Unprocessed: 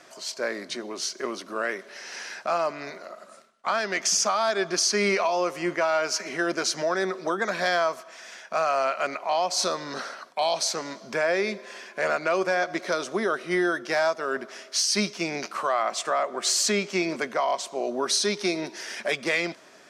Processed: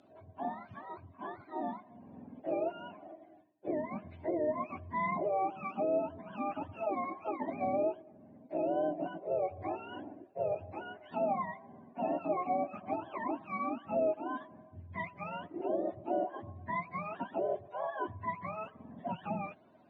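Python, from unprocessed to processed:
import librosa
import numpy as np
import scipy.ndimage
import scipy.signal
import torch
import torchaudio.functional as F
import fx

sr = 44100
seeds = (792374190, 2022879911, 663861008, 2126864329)

y = fx.octave_mirror(x, sr, pivot_hz=640.0)
y = fx.cabinet(y, sr, low_hz=420.0, low_slope=12, high_hz=9000.0, hz=(470.0, 1200.0, 1900.0, 3600.0), db=(-6, -9, -7, 7))
y = F.gain(torch.from_numpy(y), -3.0).numpy()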